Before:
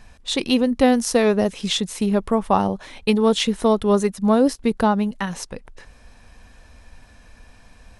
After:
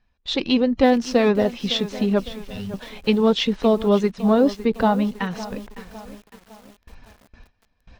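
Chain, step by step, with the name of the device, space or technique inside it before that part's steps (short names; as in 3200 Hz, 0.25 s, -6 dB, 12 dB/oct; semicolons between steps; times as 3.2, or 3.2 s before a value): 2.25–2.74 elliptic band-stop 150–2300 Hz; clip after many re-uploads (LPF 5100 Hz 24 dB/oct; bin magnitudes rounded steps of 15 dB); gate with hold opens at -36 dBFS; lo-fi delay 0.557 s, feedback 55%, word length 6-bit, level -15 dB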